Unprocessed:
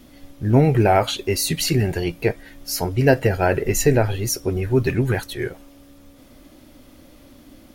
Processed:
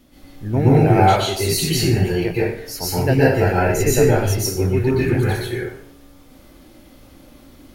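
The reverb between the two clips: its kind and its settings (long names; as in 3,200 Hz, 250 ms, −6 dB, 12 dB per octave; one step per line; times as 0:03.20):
dense smooth reverb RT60 0.67 s, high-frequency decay 0.75×, pre-delay 110 ms, DRR −7.5 dB
level −6 dB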